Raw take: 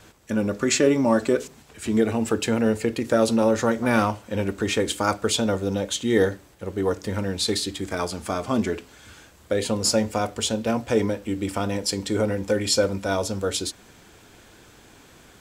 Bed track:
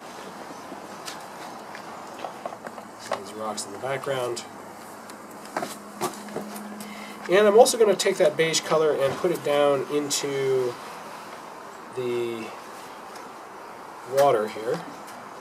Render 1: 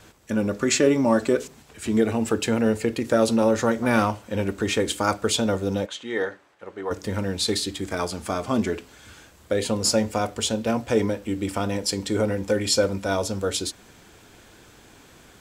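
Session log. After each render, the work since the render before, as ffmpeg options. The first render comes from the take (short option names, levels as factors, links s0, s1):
-filter_complex "[0:a]asplit=3[s0][s1][s2];[s0]afade=t=out:st=5.85:d=0.02[s3];[s1]bandpass=f=1300:t=q:w=0.76,afade=t=in:st=5.85:d=0.02,afade=t=out:st=6.9:d=0.02[s4];[s2]afade=t=in:st=6.9:d=0.02[s5];[s3][s4][s5]amix=inputs=3:normalize=0"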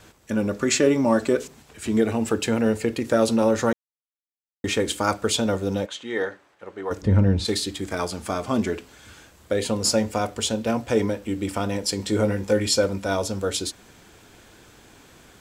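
-filter_complex "[0:a]asplit=3[s0][s1][s2];[s0]afade=t=out:st=7.01:d=0.02[s3];[s1]aemphasis=mode=reproduction:type=riaa,afade=t=in:st=7.01:d=0.02,afade=t=out:st=7.44:d=0.02[s4];[s2]afade=t=in:st=7.44:d=0.02[s5];[s3][s4][s5]amix=inputs=3:normalize=0,asettb=1/sr,asplit=3[s6][s7][s8];[s6]atrim=end=11.974[s9];[s7]atrim=start=11.97:end=12.67,asetpts=PTS-STARTPTS,afade=t=in:d=0.004:c=qsin,afade=t=out:st=0.696:d=0.004:c=qsin,asplit=2[s10][s11];[s11]adelay=19,volume=0.447[s12];[s10][s12]amix=inputs=2:normalize=0,atrim=end_sample=30870[s13];[s8]atrim=start=12.666[s14];[s9][s13]acrossfade=d=0.004:c1=hsin:c2=qsin[s15];[s15][s14]acrossfade=d=0.004:c1=qsin:c2=hsin,asplit=3[s16][s17][s18];[s16]atrim=end=3.73,asetpts=PTS-STARTPTS,afade=t=out:st=3.726:d=0.004:c=hsin[s19];[s17]atrim=start=3.73:end=4.64,asetpts=PTS-STARTPTS,volume=0[s20];[s18]atrim=start=4.64,asetpts=PTS-STARTPTS,afade=t=in:d=0.004:c=hsin[s21];[s19][s20][s21]concat=n=3:v=0:a=1"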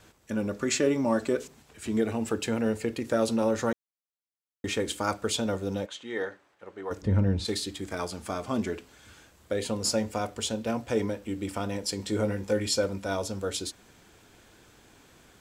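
-af "volume=0.501"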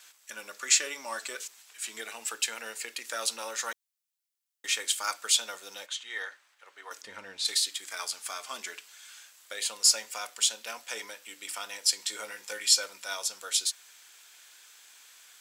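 -af "highpass=1300,highshelf=f=2800:g=9.5"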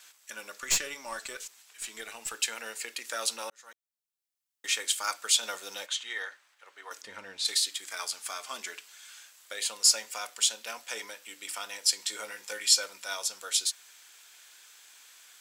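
-filter_complex "[0:a]asettb=1/sr,asplit=3[s0][s1][s2];[s0]atrim=end=0.604[s3];[s1]atrim=start=0.6:end=2.34,asetpts=PTS-STARTPTS,afade=t=in:d=0.004:c=qsin,afade=t=out:st=1.736:d=0.004:c=qsin,aeval=exprs='(tanh(7.94*val(0)+0.5)-tanh(0.5))/7.94':c=same[s4];[s2]atrim=start=2.336[s5];[s3][s4]acrossfade=d=0.004:c1=hsin:c2=qsin[s6];[s6][s5]acrossfade=d=0.004:c1=qsin:c2=hsin,asplit=4[s7][s8][s9][s10];[s7]atrim=end=3.5,asetpts=PTS-STARTPTS,afade=t=out:st=3.496:d=0.004:c=hsin[s11];[s8]atrim=start=3.5:end=5.432,asetpts=PTS-STARTPTS,afade=t=in:d=1.16[s12];[s9]atrim=start=5.428:end=6.132,asetpts=PTS-STARTPTS,volume=1.5[s13];[s10]atrim=start=6.128[s14];[s11][s12]concat=n=2:v=0:a=1[s15];[s15][s13]acrossfade=d=0.004:c1=hsin:c2=hsin[s16];[s16][s14]acrossfade=d=0.004:c1=hsin:c2=hsin"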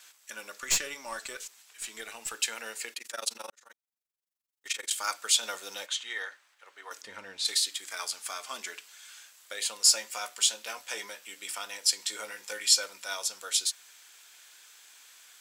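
-filter_complex "[0:a]asettb=1/sr,asplit=3[s0][s1][s2];[s0]atrim=end=2.934[s3];[s1]atrim=start=2.93:end=4.91,asetpts=PTS-STARTPTS,afade=t=in:d=0.004:c=qsin,afade=t=out:st=1.976:d=0.004:c=qsin,tremolo=f=23:d=0.947[s4];[s2]atrim=start=4.906[s5];[s3][s4]acrossfade=d=0.004:c1=hsin:c2=qsin[s6];[s6][s5]acrossfade=d=0.004:c1=qsin:c2=hsin,asettb=1/sr,asplit=3[s7][s8][s9];[s7]atrim=end=9.844[s10];[s8]atrim=start=9.84:end=11.55,asetpts=PTS-STARTPTS,afade=t=in:d=0.004:c=qsin,afade=t=out:st=1.706:d=0.004:c=qsin,asplit=2[s11][s12];[s12]adelay=15,volume=0.447[s13];[s11][s13]amix=inputs=2:normalize=0,atrim=end_sample=75411[s14];[s9]atrim=start=11.546[s15];[s10][s14]acrossfade=d=0.004:c1=hsin:c2=qsin[s16];[s16][s15]acrossfade=d=0.004:c1=qsin:c2=hsin"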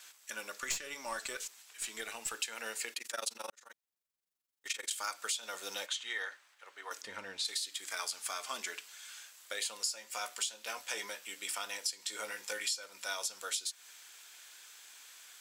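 -af "acompressor=threshold=0.0224:ratio=10"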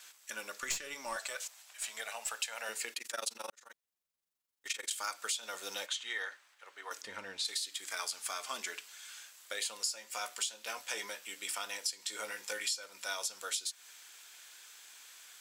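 -filter_complex "[0:a]asettb=1/sr,asplit=3[s0][s1][s2];[s0]atrim=end=1.164[s3];[s1]atrim=start=1.16:end=2.69,asetpts=PTS-STARTPTS,afade=t=in:d=0.004:c=qsin,afade=t=out:st=1.526:d=0.004:c=qsin,lowshelf=f=470:t=q:w=3:g=-8.5[s4];[s2]atrim=start=2.686[s5];[s3][s4]acrossfade=d=0.004:c1=hsin:c2=qsin[s6];[s6][s5]acrossfade=d=0.004:c1=qsin:c2=hsin"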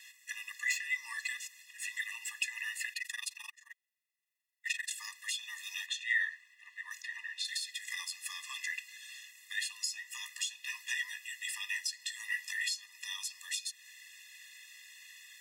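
-af "highpass=f=2100:t=q:w=7.6,afftfilt=real='re*eq(mod(floor(b*sr/1024/410),2),0)':imag='im*eq(mod(floor(b*sr/1024/410),2),0)':win_size=1024:overlap=0.75"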